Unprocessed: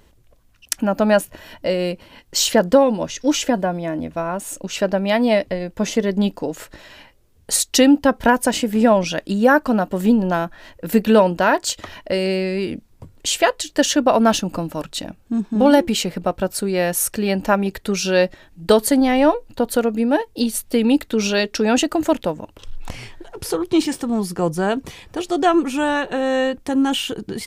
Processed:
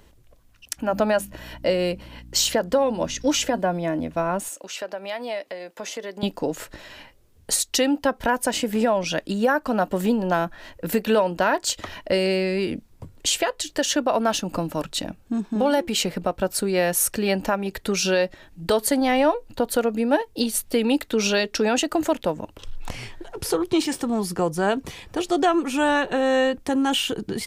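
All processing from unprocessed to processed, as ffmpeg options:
-filter_complex "[0:a]asettb=1/sr,asplit=3[a][b][c];[a]atrim=end=0.774[d];[b]atrim=start=0.77:end=3.59,asetpts=PTS-STARTPTS,afade=t=in:d=0.004:c=qsin,afade=t=out:st=2.816:d=0.004:c=qsin,bandreject=f=50:t=h:w=6,bandreject=f=100:t=h:w=6,bandreject=f=150:t=h:w=6,bandreject=f=200:t=h:w=6,bandreject=f=250:t=h:w=6,aeval=exprs='val(0)+0.00794*(sin(2*PI*60*n/s)+sin(2*PI*2*60*n/s)/2+sin(2*PI*3*60*n/s)/3+sin(2*PI*4*60*n/s)/4+sin(2*PI*5*60*n/s)/5)':c=same[e];[c]atrim=start=3.586[f];[d][e]acrossfade=d=0.004:c1=hsin:c2=qsin[g];[g][f]acrossfade=d=0.004:c1=qsin:c2=hsin,asettb=1/sr,asplit=3[h][i][j];[h]atrim=end=4.484[k];[i]atrim=start=4.48:end=6.23,asetpts=PTS-STARTPTS,afade=t=in:d=0.004:c=qsin,afade=t=out:st=1.746:d=0.004:c=qsin,highpass=520,acompressor=threshold=-34dB:ratio=2:attack=3.2:release=140:knee=1:detection=peak[l];[j]atrim=start=6.226[m];[k][l]acrossfade=d=0.004:c1=hsin:c2=qsin[n];[n][m]acrossfade=d=0.004:c1=qsin:c2=hsin,acrossover=split=370[o][p];[o]acompressor=threshold=-26dB:ratio=3[q];[q][p]amix=inputs=2:normalize=0,alimiter=limit=-10.5dB:level=0:latency=1:release=267"

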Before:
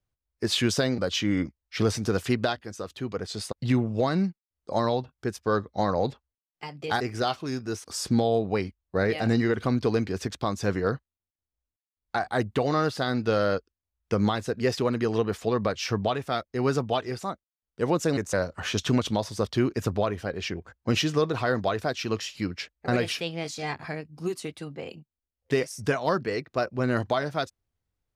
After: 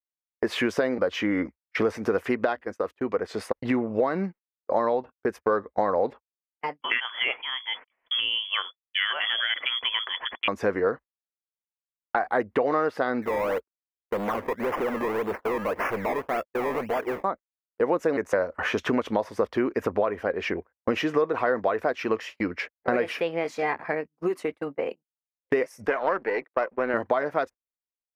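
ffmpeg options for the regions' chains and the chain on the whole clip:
-filter_complex "[0:a]asettb=1/sr,asplit=3[a][b][c];[a]atrim=end=6.814[d];[b]atrim=start=6.81:end=10.48,asetpts=PTS-STARTPTS,afade=t=in:d=0.004:c=qsin,afade=t=out:st=3.666:d=0.004:c=qsin,highpass=52,lowpass=f=3k:t=q:w=0.5098,lowpass=f=3k:t=q:w=0.6013,lowpass=f=3k:t=q:w=0.9,lowpass=f=3k:t=q:w=2.563,afreqshift=-3500[e];[c]atrim=start=10.476[f];[d][e]acrossfade=d=0.004:c1=hsin:c2=qsin[g];[g][f]acrossfade=d=0.004:c1=qsin:c2=hsin,asettb=1/sr,asplit=3[h][i][j];[h]atrim=end=13.224[k];[i]atrim=start=13.22:end=17.24,asetpts=PTS-STARTPTS,afade=t=in:d=0.004:c=qsin,afade=t=out:st=4.016:d=0.004:c=qsin,acrusher=samples=21:mix=1:aa=0.000001:lfo=1:lforange=21:lforate=1.8,volume=31dB,asoftclip=hard,volume=-31dB[l];[j]atrim=start=17.236[m];[k][l]acrossfade=d=0.004:c1=hsin:c2=qsin[n];[n][m]acrossfade=d=0.004:c1=qsin:c2=hsin,asettb=1/sr,asplit=3[o][p][q];[o]atrim=end=25.874[r];[p]atrim=start=25.87:end=26.94,asetpts=PTS-STARTPTS,afade=t=in:d=0.004:c=qsin,afade=t=out:st=1.066:d=0.004:c=qsin,aeval=exprs='if(lt(val(0),0),0.447*val(0),val(0))':c=same,lowpass=3.4k,aemphasis=mode=production:type=bsi[s];[q]atrim=start=26.936[t];[r][s]acrossfade=d=0.004:c1=hsin:c2=qsin[u];[u][t]acrossfade=d=0.004:c1=qsin:c2=hsin,agate=range=-33dB:threshold=-38dB:ratio=16:detection=peak,equalizer=f=125:t=o:w=1:g=-10,equalizer=f=250:t=o:w=1:g=5,equalizer=f=500:t=o:w=1:g=10,equalizer=f=1k:t=o:w=1:g=8,equalizer=f=2k:t=o:w=1:g=10,equalizer=f=4k:t=o:w=1:g=-8,equalizer=f=8k:t=o:w=1:g=-8,acompressor=threshold=-24dB:ratio=2.5"

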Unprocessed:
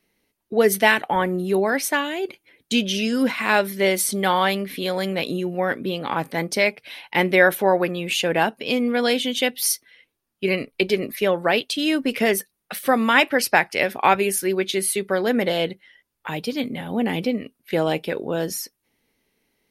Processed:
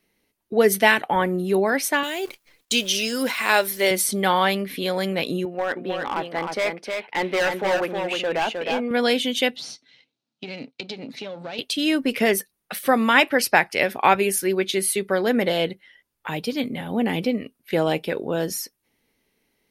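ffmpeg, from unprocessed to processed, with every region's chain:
-filter_complex "[0:a]asettb=1/sr,asplit=3[a][b][c];[a]atrim=end=2.034[d];[b]atrim=start=2.03:end=3.91,asetpts=PTS-STARTPTS,afade=t=in:d=0.004:c=qsin,afade=t=out:st=1.876:d=0.004:c=qsin,bass=f=250:g=-13,treble=f=4k:g=8,acrusher=bits=8:dc=4:mix=0:aa=0.000001[e];[c]atrim=start=3.906[f];[d][e]acrossfade=d=0.004:c1=hsin:c2=qsin[g];[g][f]acrossfade=d=0.004:c1=qsin:c2=hsin,asettb=1/sr,asplit=3[h][i][j];[h]atrim=end=5.454[k];[i]atrim=start=5.45:end=8.91,asetpts=PTS-STARTPTS,afade=t=in:d=0.004:c=qsin,afade=t=out:st=3.456:d=0.004:c=qsin,bandpass=f=940:t=q:w=0.51,asoftclip=type=hard:threshold=-18.5dB,aecho=1:1:311:0.596,atrim=end_sample=152586[l];[j]atrim=start=8.906[m];[k][l]acrossfade=d=0.004:c1=hsin:c2=qsin[n];[n][m]acrossfade=d=0.004:c1=qsin:c2=hsin,asettb=1/sr,asplit=3[o][p][q];[o]atrim=end=9.564[r];[p]atrim=start=9.56:end=11.59,asetpts=PTS-STARTPTS,afade=t=in:d=0.004:c=qsin,afade=t=out:st=2.026:d=0.004:c=qsin,aeval=exprs='if(lt(val(0),0),0.447*val(0),val(0))':c=same,acompressor=threshold=-29dB:ratio=4:attack=3.2:release=140:knee=1:detection=peak,highpass=f=120:w=0.5412,highpass=f=120:w=1.3066,equalizer=f=130:t=q:w=4:g=3,equalizer=f=260:t=q:w=4:g=7,equalizer=f=370:t=q:w=4:g=-7,equalizer=f=1.1k:t=q:w=4:g=-7,equalizer=f=1.8k:t=q:w=4:g=-7,equalizer=f=4k:t=q:w=4:g=8,lowpass=f=6.7k:w=0.5412,lowpass=f=6.7k:w=1.3066[s];[q]atrim=start=11.586[t];[r][s]acrossfade=d=0.004:c1=hsin:c2=qsin[u];[u][t]acrossfade=d=0.004:c1=qsin:c2=hsin"

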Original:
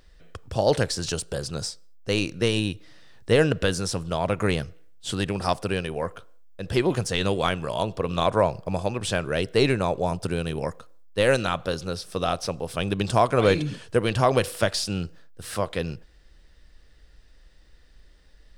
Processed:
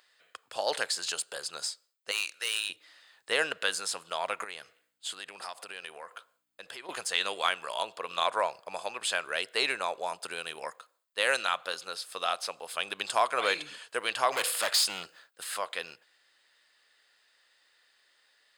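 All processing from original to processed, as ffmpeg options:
-filter_complex "[0:a]asettb=1/sr,asplit=3[a][b][c];[a]atrim=end=2.114[d];[b]atrim=start=2.11:end=2.7,asetpts=PTS-STARTPTS,afade=t=in:d=0.004:c=qsin,afade=t=out:st=0.586:d=0.004:c=qsin,highpass=770,equalizer=f=8.5k:w=0.71:g=5.5,volume=22.5dB,asoftclip=hard,volume=-22.5dB[e];[c]atrim=start=2.696[f];[d][e]acrossfade=d=0.004:c1=hsin:c2=qsin[g];[g][f]acrossfade=d=0.004:c1=qsin:c2=hsin,asettb=1/sr,asplit=3[h][i][j];[h]atrim=end=4.444[k];[i]atrim=start=4.44:end=6.89,asetpts=PTS-STARTPTS,afade=t=in:d=0.004:c=qsin,afade=t=out:st=2.446:d=0.004:c=qsin,acompressor=threshold=-30dB:ratio=8:attack=3.2:release=140:knee=1:detection=peak,aeval=exprs='val(0)+0.000891*(sin(2*PI*60*n/s)+sin(2*PI*2*60*n/s)/2+sin(2*PI*3*60*n/s)/3+sin(2*PI*4*60*n/s)/4+sin(2*PI*5*60*n/s)/5)':c=same[l];[j]atrim=start=6.886[m];[k][l]acrossfade=d=0.004:c1=hsin:c2=qsin[n];[n][m]acrossfade=d=0.004:c1=qsin:c2=hsin,asettb=1/sr,asplit=3[o][p][q];[o]atrim=end=14.324[r];[p]atrim=start=14.32:end=15.44,asetpts=PTS-STARTPTS,afade=t=in:d=0.004:c=qsin,afade=t=out:st=1.116:d=0.004:c=qsin,volume=25.5dB,asoftclip=hard,volume=-25.5dB,acontrast=63[s];[q]atrim=start=15.436[t];[r][s]acrossfade=d=0.004:c1=hsin:c2=qsin[u];[u][t]acrossfade=d=0.004:c1=qsin:c2=hsin,highpass=1k,bandreject=f=5.7k:w=5.7"

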